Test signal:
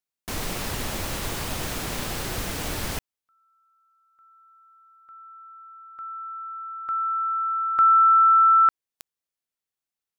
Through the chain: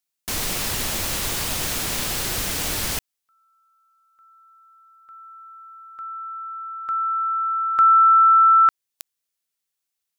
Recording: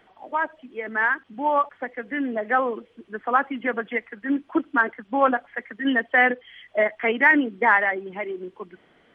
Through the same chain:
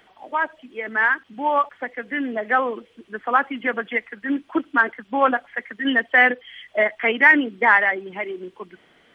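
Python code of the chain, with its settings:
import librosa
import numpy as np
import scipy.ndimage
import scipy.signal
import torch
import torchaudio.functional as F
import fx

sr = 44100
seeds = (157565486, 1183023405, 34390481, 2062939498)

y = fx.high_shelf(x, sr, hz=2200.0, db=9.0)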